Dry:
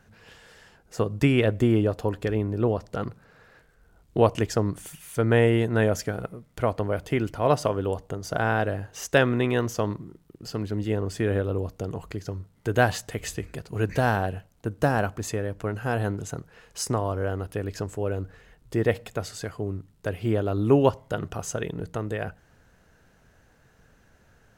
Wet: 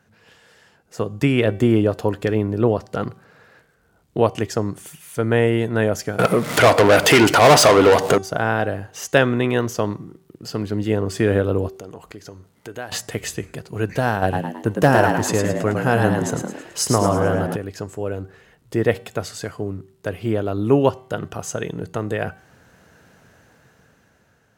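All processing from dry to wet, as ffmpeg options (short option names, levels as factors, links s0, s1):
-filter_complex "[0:a]asettb=1/sr,asplit=3[s0][s1][s2];[s0]atrim=end=6.194[s3];[s1]atrim=start=6.19:end=8.18,asetpts=PTS-STARTPTS,afade=t=in:d=0.004:c=qsin,afade=t=out:st=1.986:d=0.004:c=qsin,acompressor=mode=upward:threshold=0.0447:ratio=2.5:attack=3.2:release=140:knee=2.83:detection=peak,asplit=2[s4][s5];[s5]highpass=f=720:p=1,volume=39.8,asoftclip=type=tanh:threshold=0.422[s6];[s4][s6]amix=inputs=2:normalize=0,lowpass=f=7900:p=1,volume=0.501[s7];[s2]atrim=start=8.176[s8];[s3][s7]acrossfade=d=0.004:c1=hsin:c2=qsin[s9];[s9][s8]acrossfade=d=0.004:c1=qsin:c2=hsin,asettb=1/sr,asplit=3[s10][s11][s12];[s10]atrim=end=11.684[s13];[s11]atrim=start=11.68:end=12.92,asetpts=PTS-STARTPTS,afade=t=in:d=0.004:c=qsin,afade=t=out:st=1.236:d=0.004:c=qsin,equalizer=f=120:w=0.79:g=-8,acompressor=threshold=0.00355:ratio=2:attack=3.2:release=140:knee=1:detection=peak[s14];[s12]atrim=start=12.916[s15];[s13][s14]acrossfade=d=0.004:c1=hsin:c2=qsin[s16];[s16][s15]acrossfade=d=0.004:c1=qsin:c2=hsin,asettb=1/sr,asplit=3[s17][s18][s19];[s17]atrim=end=14.224[s20];[s18]atrim=start=14.22:end=17.56,asetpts=PTS-STARTPTS,afade=t=in:d=0.004:c=qsin,afade=t=out:st=3.336:d=0.004:c=qsin,acontrast=89,aeval=exprs='0.447*(abs(mod(val(0)/0.447+3,4)-2)-1)':c=same,asplit=6[s21][s22][s23][s24][s25][s26];[s22]adelay=108,afreqshift=75,volume=0.562[s27];[s23]adelay=216,afreqshift=150,volume=0.237[s28];[s24]adelay=324,afreqshift=225,volume=0.0989[s29];[s25]adelay=432,afreqshift=300,volume=0.0417[s30];[s26]adelay=540,afreqshift=375,volume=0.0176[s31];[s21][s27][s28][s29][s30][s31]amix=inputs=6:normalize=0,atrim=end_sample=147294[s32];[s19]atrim=start=17.556[s33];[s20][s32]acrossfade=d=0.004:c1=hsin:c2=qsin[s34];[s34][s33]acrossfade=d=0.004:c1=qsin:c2=hsin,highpass=100,bandreject=f=383.6:t=h:w=4,bandreject=f=767.2:t=h:w=4,bandreject=f=1150.8:t=h:w=4,bandreject=f=1534.4:t=h:w=4,bandreject=f=1918:t=h:w=4,bandreject=f=2301.6:t=h:w=4,bandreject=f=2685.2:t=h:w=4,bandreject=f=3068.8:t=h:w=4,bandreject=f=3452.4:t=h:w=4,bandreject=f=3836:t=h:w=4,bandreject=f=4219.6:t=h:w=4,bandreject=f=4603.2:t=h:w=4,bandreject=f=4986.8:t=h:w=4,bandreject=f=5370.4:t=h:w=4,bandreject=f=5754:t=h:w=4,bandreject=f=6137.6:t=h:w=4,bandreject=f=6521.2:t=h:w=4,bandreject=f=6904.8:t=h:w=4,bandreject=f=7288.4:t=h:w=4,bandreject=f=7672:t=h:w=4,bandreject=f=8055.6:t=h:w=4,bandreject=f=8439.2:t=h:w=4,bandreject=f=8822.8:t=h:w=4,bandreject=f=9206.4:t=h:w=4,bandreject=f=9590:t=h:w=4,bandreject=f=9973.6:t=h:w=4,bandreject=f=10357.2:t=h:w=4,bandreject=f=10740.8:t=h:w=4,bandreject=f=11124.4:t=h:w=4,dynaudnorm=f=380:g=7:m=3.76,volume=0.891"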